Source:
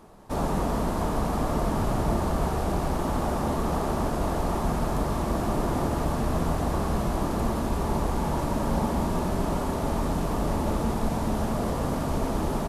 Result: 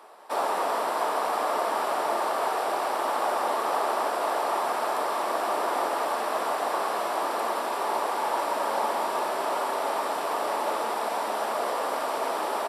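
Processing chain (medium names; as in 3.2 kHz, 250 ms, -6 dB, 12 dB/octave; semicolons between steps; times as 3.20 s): Bessel high-pass 710 Hz, order 4; treble shelf 4.3 kHz -6 dB; band-stop 6.5 kHz, Q 5.5; trim +7.5 dB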